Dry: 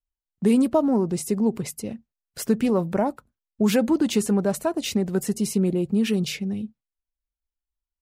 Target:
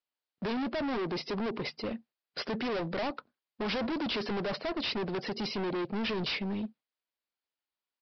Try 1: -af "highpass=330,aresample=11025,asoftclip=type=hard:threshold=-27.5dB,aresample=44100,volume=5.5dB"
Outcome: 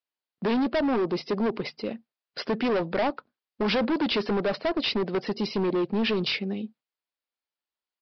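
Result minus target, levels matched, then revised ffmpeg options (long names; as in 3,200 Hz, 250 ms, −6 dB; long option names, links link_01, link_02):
hard clipping: distortion −4 dB
-af "highpass=330,aresample=11025,asoftclip=type=hard:threshold=-36.5dB,aresample=44100,volume=5.5dB"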